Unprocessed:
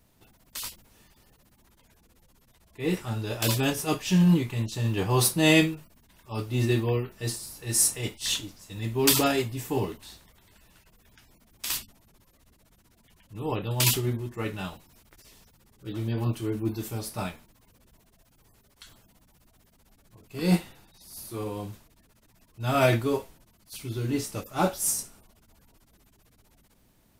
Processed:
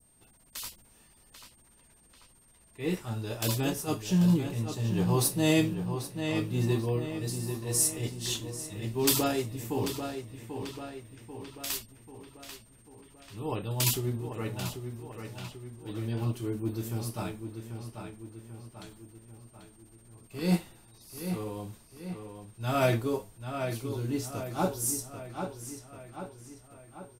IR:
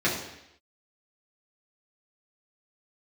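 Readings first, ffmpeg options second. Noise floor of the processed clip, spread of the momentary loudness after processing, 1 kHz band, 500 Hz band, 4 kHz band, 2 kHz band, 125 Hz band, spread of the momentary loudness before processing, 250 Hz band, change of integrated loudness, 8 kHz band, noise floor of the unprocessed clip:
−60 dBFS, 20 LU, −4.0 dB, −3.0 dB, −5.5 dB, −7.0 dB, −2.5 dB, 17 LU, −2.5 dB, −4.5 dB, −4.0 dB, −63 dBFS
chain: -filter_complex "[0:a]aeval=exprs='val(0)+0.00112*sin(2*PI*8700*n/s)':channel_layout=same,asplit=2[link_01][link_02];[link_02]adelay=790,lowpass=frequency=4100:poles=1,volume=-7.5dB,asplit=2[link_03][link_04];[link_04]adelay=790,lowpass=frequency=4100:poles=1,volume=0.54,asplit=2[link_05][link_06];[link_06]adelay=790,lowpass=frequency=4100:poles=1,volume=0.54,asplit=2[link_07][link_08];[link_08]adelay=790,lowpass=frequency=4100:poles=1,volume=0.54,asplit=2[link_09][link_10];[link_10]adelay=790,lowpass=frequency=4100:poles=1,volume=0.54,asplit=2[link_11][link_12];[link_12]adelay=790,lowpass=frequency=4100:poles=1,volume=0.54,asplit=2[link_13][link_14];[link_14]adelay=790,lowpass=frequency=4100:poles=1,volume=0.54[link_15];[link_01][link_03][link_05][link_07][link_09][link_11][link_13][link_15]amix=inputs=8:normalize=0,adynamicequalizer=threshold=0.00501:dfrequency=2200:dqfactor=0.78:tfrequency=2200:tqfactor=0.78:attack=5:release=100:ratio=0.375:range=3.5:mode=cutabove:tftype=bell,volume=-3.5dB"

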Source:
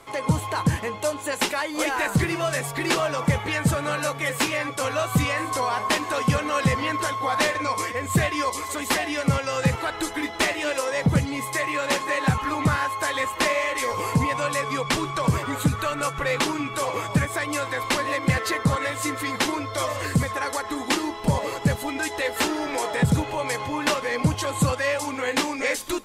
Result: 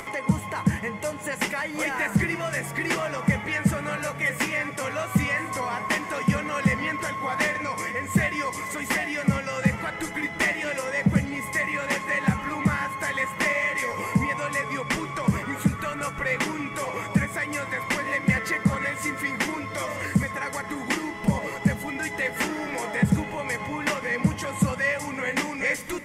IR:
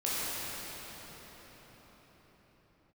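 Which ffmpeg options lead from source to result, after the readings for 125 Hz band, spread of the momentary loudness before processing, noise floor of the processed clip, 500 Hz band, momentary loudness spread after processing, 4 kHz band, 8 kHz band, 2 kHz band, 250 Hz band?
−2.5 dB, 4 LU, −36 dBFS, −4.5 dB, 5 LU, −7.5 dB, −5.0 dB, +1.0 dB, 0.0 dB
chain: -filter_complex "[0:a]equalizer=frequency=200:width_type=o:width=0.33:gain=11,equalizer=frequency=2000:width_type=o:width=0.33:gain=10,equalizer=frequency=4000:width_type=o:width=0.33:gain=-9,acompressor=mode=upward:threshold=-23dB:ratio=2.5,asplit=2[link_01][link_02];[1:a]atrim=start_sample=2205[link_03];[link_02][link_03]afir=irnorm=-1:irlink=0,volume=-24dB[link_04];[link_01][link_04]amix=inputs=2:normalize=0,volume=-5.5dB"

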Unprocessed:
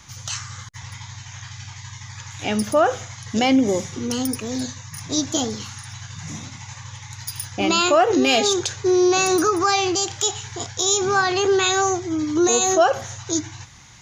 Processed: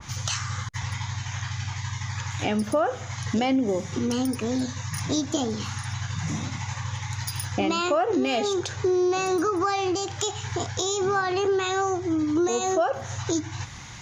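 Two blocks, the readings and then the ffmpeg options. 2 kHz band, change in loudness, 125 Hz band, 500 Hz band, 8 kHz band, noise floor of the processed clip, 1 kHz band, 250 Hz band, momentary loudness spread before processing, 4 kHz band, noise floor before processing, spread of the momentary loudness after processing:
−6.0 dB, −6.5 dB, +3.5 dB, −4.5 dB, −9.0 dB, −38 dBFS, −5.0 dB, −3.5 dB, 20 LU, −8.0 dB, −41 dBFS, 8 LU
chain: -af "highshelf=frequency=5500:gain=-7,acompressor=threshold=-32dB:ratio=3,adynamicequalizer=threshold=0.00501:dfrequency=1900:dqfactor=0.7:tfrequency=1900:tqfactor=0.7:attack=5:release=100:ratio=0.375:range=2.5:mode=cutabove:tftype=highshelf,volume=7dB"

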